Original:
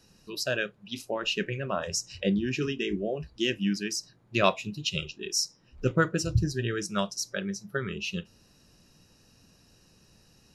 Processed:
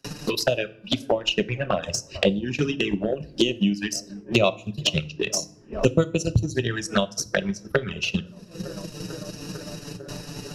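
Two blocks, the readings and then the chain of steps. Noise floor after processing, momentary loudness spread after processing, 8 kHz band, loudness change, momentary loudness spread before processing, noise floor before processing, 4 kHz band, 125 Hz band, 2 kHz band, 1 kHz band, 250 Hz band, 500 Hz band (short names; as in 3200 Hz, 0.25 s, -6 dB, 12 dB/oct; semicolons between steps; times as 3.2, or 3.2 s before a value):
-48 dBFS, 14 LU, +3.5 dB, +4.5 dB, 8 LU, -62 dBFS, +5.5 dB, +5.0 dB, +3.5 dB, +2.0 dB, +5.5 dB, +7.0 dB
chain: de-hum 301 Hz, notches 19; gate with hold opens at -50 dBFS; dynamic EQ 570 Hz, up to +4 dB, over -41 dBFS, Q 2.5; dark delay 0.449 s, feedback 69%, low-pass 970 Hz, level -22 dB; in parallel at -2.5 dB: compressor 6:1, threshold -36 dBFS, peak gain reduction 19 dB; on the sum: transient shaper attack +9 dB, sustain -10 dB; envelope flanger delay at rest 7.5 ms, full sweep at -18 dBFS; FDN reverb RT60 0.47 s, low-frequency decay 1.6×, high-frequency decay 0.8×, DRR 14.5 dB; three-band squash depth 70%; gain +2 dB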